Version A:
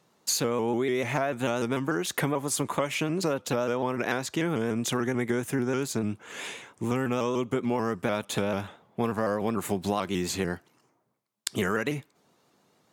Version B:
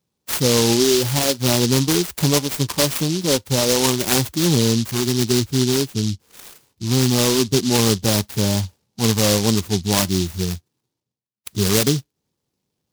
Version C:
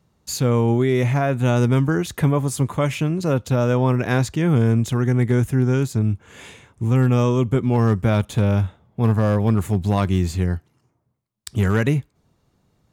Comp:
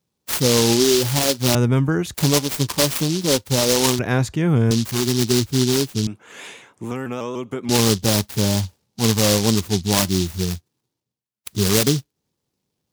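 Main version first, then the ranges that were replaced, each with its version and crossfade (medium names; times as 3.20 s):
B
1.55–2.14 s: from C
3.99–4.71 s: from C
6.07–7.69 s: from A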